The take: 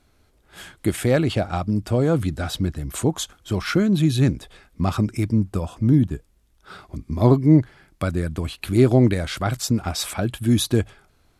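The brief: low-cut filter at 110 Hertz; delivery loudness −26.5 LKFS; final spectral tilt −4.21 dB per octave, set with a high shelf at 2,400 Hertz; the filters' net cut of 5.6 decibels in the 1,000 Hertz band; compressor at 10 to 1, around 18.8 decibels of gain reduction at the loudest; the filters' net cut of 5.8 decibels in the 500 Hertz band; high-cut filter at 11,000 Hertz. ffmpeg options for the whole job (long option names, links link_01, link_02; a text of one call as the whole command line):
ffmpeg -i in.wav -af "highpass=110,lowpass=11000,equalizer=frequency=500:width_type=o:gain=-7,equalizer=frequency=1000:width_type=o:gain=-6.5,highshelf=frequency=2400:gain=5.5,acompressor=threshold=-32dB:ratio=10,volume=10.5dB" out.wav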